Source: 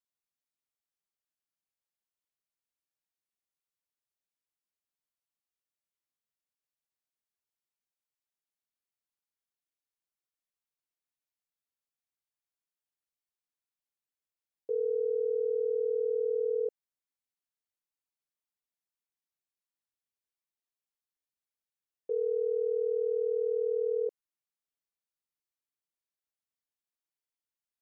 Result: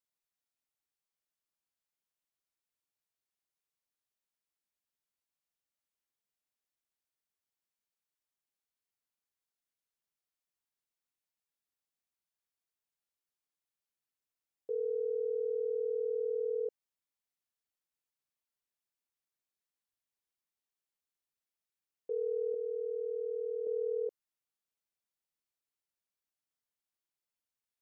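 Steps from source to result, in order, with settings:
0:22.54–0:23.67: low-shelf EQ 330 Hz −10 dB
in parallel at −1.5 dB: brickwall limiter −35 dBFS, peak gain reduction 11 dB
on the sum: level −6 dB

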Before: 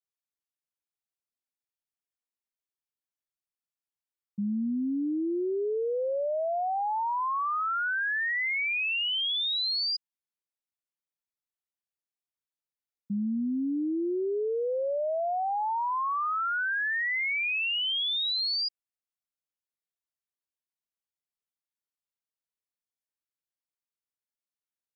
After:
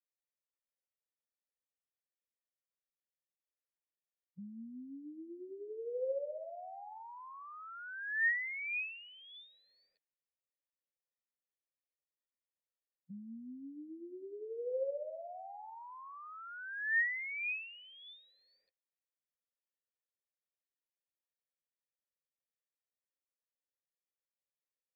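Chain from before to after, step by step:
formants moved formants −2 semitones
formant resonators in series e
level +4.5 dB

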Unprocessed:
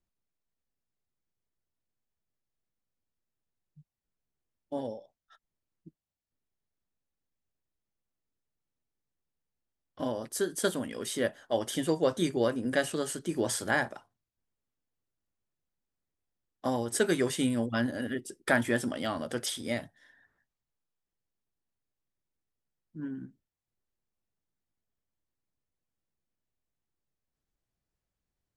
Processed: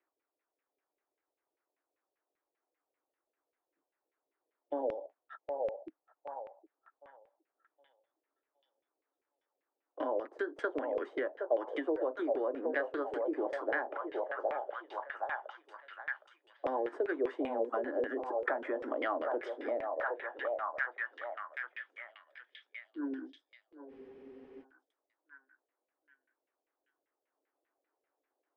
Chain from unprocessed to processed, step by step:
running median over 3 samples
in parallel at −1 dB: brickwall limiter −20 dBFS, peak gain reduction 8.5 dB
on the sum: Butterworth high-pass 280 Hz 72 dB per octave
on a send: echo through a band-pass that steps 765 ms, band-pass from 640 Hz, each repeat 0.7 octaves, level −3.5 dB
on the sum: downward compressor 4 to 1, threshold −35 dBFS, peak gain reduction 15 dB
auto-filter low-pass saw down 5.1 Hz 450–2,400 Hz
high-shelf EQ 3,700 Hz −6.5 dB
frozen spectrum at 0:23.91, 0.71 s

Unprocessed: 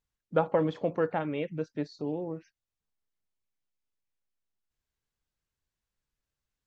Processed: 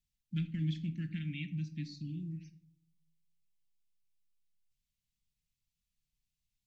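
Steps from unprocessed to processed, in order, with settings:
inverse Chebyshev band-stop filter 430–1,200 Hz, stop band 50 dB
convolution reverb RT60 0.65 s, pre-delay 6 ms, DRR 9.5 dB

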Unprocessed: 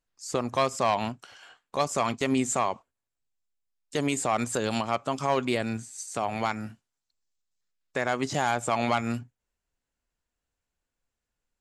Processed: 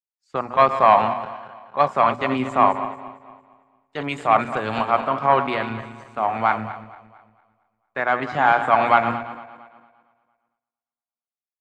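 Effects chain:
feedback delay that plays each chunk backwards 114 ms, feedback 72%, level −9 dB
high-shelf EQ 8,000 Hz −7 dB
mains-hum notches 60/120/180/240 Hz
noise gate with hold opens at −55 dBFS
drawn EQ curve 470 Hz 0 dB, 740 Hz +7 dB, 1,400 Hz +9 dB, 3,800 Hz −3 dB, 6,200 Hz −18 dB
repeating echo 342 ms, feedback 55%, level −23.5 dB
multiband upward and downward expander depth 70%
level +1.5 dB

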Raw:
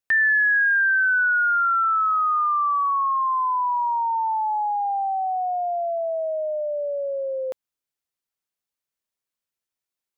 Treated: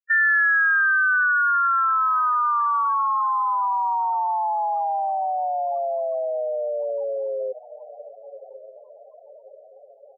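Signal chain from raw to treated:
feedback delay with all-pass diffusion 1,198 ms, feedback 55%, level −14.5 dB
spectral peaks only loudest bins 4
pitch-shifted copies added −4 semitones −12 dB

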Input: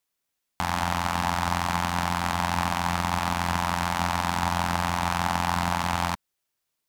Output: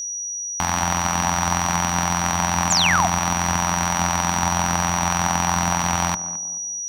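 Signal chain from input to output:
feedback echo with a band-pass in the loop 214 ms, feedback 46%, band-pass 350 Hz, level −10 dB
steady tone 5,800 Hz −30 dBFS
sound drawn into the spectrogram fall, 0:02.70–0:03.07, 640–7,900 Hz −23 dBFS
level +4 dB

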